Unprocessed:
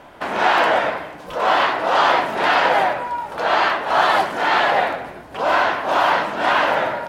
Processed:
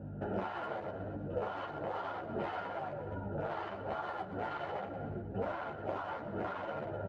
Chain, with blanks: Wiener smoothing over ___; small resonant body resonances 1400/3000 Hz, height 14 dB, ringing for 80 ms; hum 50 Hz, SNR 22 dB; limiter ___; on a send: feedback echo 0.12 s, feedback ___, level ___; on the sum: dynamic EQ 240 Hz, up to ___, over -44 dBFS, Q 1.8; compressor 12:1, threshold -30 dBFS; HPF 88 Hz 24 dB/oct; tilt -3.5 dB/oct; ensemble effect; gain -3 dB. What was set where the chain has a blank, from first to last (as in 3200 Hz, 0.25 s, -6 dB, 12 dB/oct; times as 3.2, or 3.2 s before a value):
41 samples, -10 dBFS, 46%, -18 dB, -6 dB